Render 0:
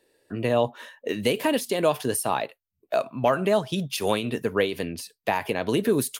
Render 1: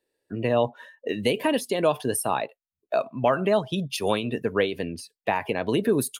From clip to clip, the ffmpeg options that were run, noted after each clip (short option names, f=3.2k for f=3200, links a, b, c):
-af "afftdn=nr=13:nf=-39"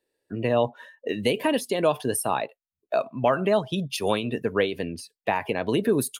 -af anull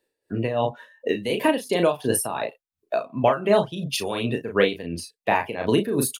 -filter_complex "[0:a]asplit=2[a][b];[b]adelay=35,volume=-5.5dB[c];[a][c]amix=inputs=2:normalize=0,tremolo=f=2.8:d=0.7,volume=4dB"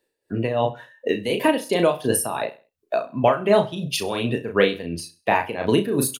-af "aecho=1:1:66|132|198:0.133|0.0413|0.0128,volume=1.5dB"